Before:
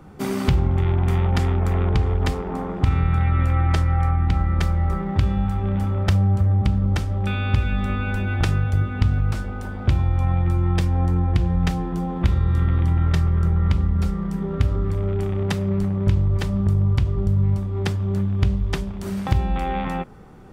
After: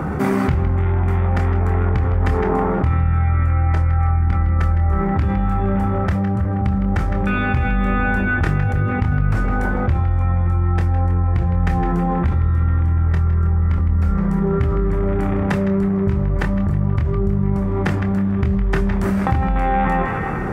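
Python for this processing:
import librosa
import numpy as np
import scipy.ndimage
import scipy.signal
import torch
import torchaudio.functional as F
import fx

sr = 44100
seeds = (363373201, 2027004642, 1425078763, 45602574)

p1 = scipy.signal.sosfilt(scipy.signal.butter(2, 44.0, 'highpass', fs=sr, output='sos'), x)
p2 = fx.high_shelf_res(p1, sr, hz=2500.0, db=-9.5, q=1.5)
p3 = p2 + fx.echo_banded(p2, sr, ms=160, feedback_pct=56, hz=1900.0, wet_db=-11.5, dry=0)
p4 = fx.rider(p3, sr, range_db=10, speed_s=0.5)
p5 = fx.chorus_voices(p4, sr, voices=6, hz=0.25, base_ms=26, depth_ms=1.9, mix_pct=30)
y = fx.env_flatten(p5, sr, amount_pct=70)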